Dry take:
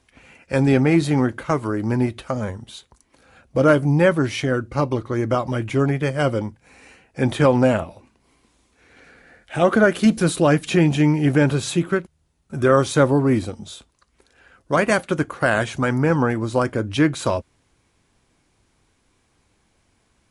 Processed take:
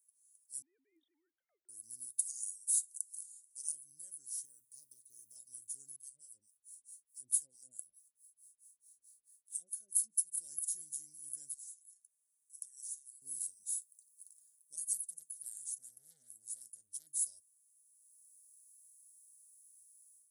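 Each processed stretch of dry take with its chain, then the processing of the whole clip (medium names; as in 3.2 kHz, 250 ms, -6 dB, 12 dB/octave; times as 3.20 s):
0.62–1.69 s: formants replaced by sine waves + peaking EQ 220 Hz -8 dB 2.2 oct
2.19–3.72 s: low-pass 9.5 kHz 24 dB/octave + tilt EQ +4.5 dB/octave
4.45–5.36 s: short-mantissa float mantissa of 8-bit + compression 3:1, threshold -23 dBFS
5.96–10.37 s: compression 2:1, threshold -25 dBFS + harmonic tremolo 4.6 Hz, depth 100%, crossover 650 Hz
11.54–13.22 s: rippled Chebyshev high-pass 1.7 kHz, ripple 6 dB + treble shelf 5.1 kHz -7 dB + compression 5:1, threshold -44 dBFS
14.93–17.07 s: peaking EQ 170 Hz +9.5 dB 0.4 oct + transformer saturation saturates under 1.5 kHz
whole clip: level rider gain up to 13 dB; inverse Chebyshev high-pass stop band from 2.8 kHz, stop band 70 dB; trim +7 dB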